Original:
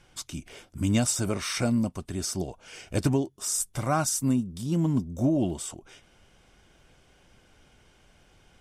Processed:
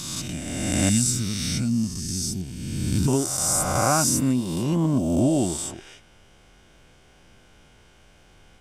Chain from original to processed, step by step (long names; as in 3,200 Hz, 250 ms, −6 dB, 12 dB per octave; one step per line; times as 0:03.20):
peak hold with a rise ahead of every peak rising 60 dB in 1.91 s
0:00.89–0:03.08: drawn EQ curve 230 Hz 0 dB, 550 Hz −25 dB, 3,900 Hz −2 dB
level +1.5 dB